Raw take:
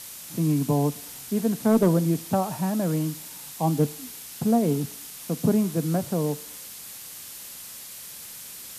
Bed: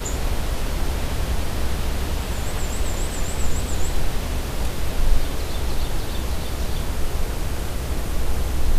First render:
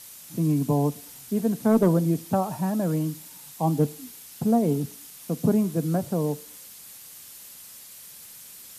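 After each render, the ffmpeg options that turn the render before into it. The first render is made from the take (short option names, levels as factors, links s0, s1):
-af "afftdn=nr=6:nf=-41"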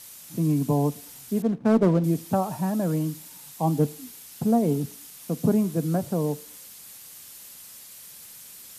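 -filter_complex "[0:a]asettb=1/sr,asplit=3[s0][s1][s2];[s0]atrim=end=1.424[s3];[s1]atrim=start=1.42:end=2.04,asetpts=PTS-STARTPTS,afade=t=in:d=0.004:c=qsin,afade=t=out:st=0.616:d=0.004:c=qsin,adynamicsmooth=sensitivity=6.5:basefreq=570[s4];[s2]atrim=start=2.036[s5];[s3][s4]acrossfade=d=0.004:c1=hsin:c2=qsin[s6];[s6][s5]acrossfade=d=0.004:c1=qsin:c2=hsin"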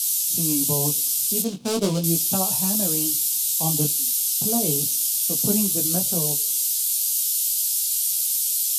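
-af "aexciter=amount=11.4:drive=6.2:freq=2800,flanger=delay=15:depth=6.6:speed=0.36"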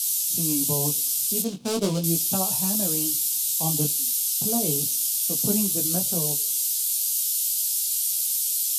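-af "volume=0.794"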